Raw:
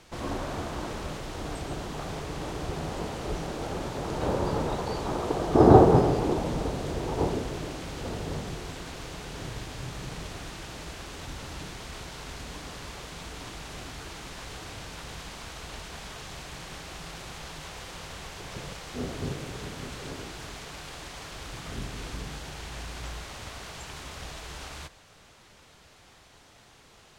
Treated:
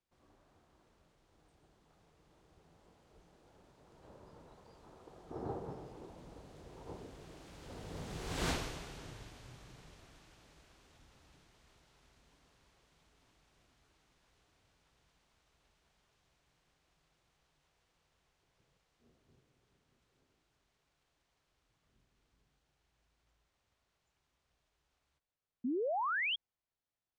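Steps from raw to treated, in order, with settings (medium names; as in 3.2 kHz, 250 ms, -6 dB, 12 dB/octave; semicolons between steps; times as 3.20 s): Doppler pass-by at 8.48 s, 15 m/s, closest 1 m; painted sound rise, 25.64–26.36 s, 230–3400 Hz -41 dBFS; trim +6.5 dB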